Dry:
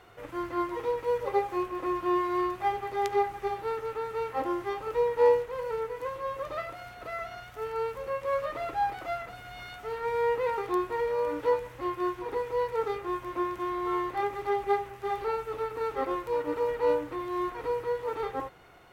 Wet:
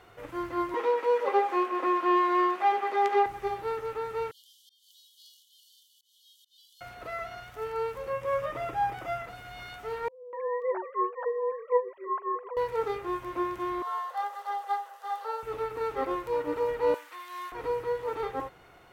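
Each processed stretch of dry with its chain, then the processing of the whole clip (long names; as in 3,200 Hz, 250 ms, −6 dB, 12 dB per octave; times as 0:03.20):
0:00.74–0:03.26: mid-hump overdrive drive 14 dB, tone 2,400 Hz, clips at −13.5 dBFS + Butterworth high-pass 210 Hz
0:04.31–0:06.81: linear-phase brick-wall high-pass 2,900 Hz + volume swells 205 ms
0:08.12–0:09.24: parametric band 140 Hz +8 dB 0.65 octaves + notch filter 4,200 Hz, Q 5.6
0:10.08–0:12.57: three sine waves on the formant tracks + three-band delay without the direct sound lows, mids, highs 250/540 ms, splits 340/2,600 Hz
0:13.82–0:15.43: Butterworth high-pass 470 Hz 96 dB per octave + parametric band 2,300 Hz −14.5 dB 0.41 octaves
0:16.94–0:17.52: high-pass filter 1,300 Hz + high-shelf EQ 3,900 Hz +6 dB
whole clip: no processing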